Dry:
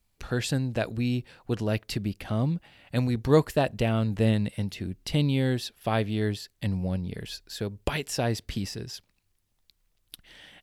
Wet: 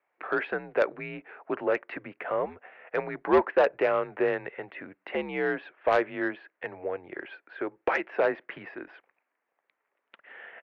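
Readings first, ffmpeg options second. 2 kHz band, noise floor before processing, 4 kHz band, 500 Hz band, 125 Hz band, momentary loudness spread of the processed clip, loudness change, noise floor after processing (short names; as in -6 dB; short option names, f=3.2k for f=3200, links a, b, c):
+5.5 dB, -73 dBFS, -12.5 dB, +3.0 dB, -22.5 dB, 18 LU, -0.5 dB, -82 dBFS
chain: -af "highpass=f=510:t=q:w=0.5412,highpass=f=510:t=q:w=1.307,lowpass=f=2.2k:t=q:w=0.5176,lowpass=f=2.2k:t=q:w=0.7071,lowpass=f=2.2k:t=q:w=1.932,afreqshift=-82,asoftclip=type=tanh:threshold=-22.5dB,volume=8.5dB"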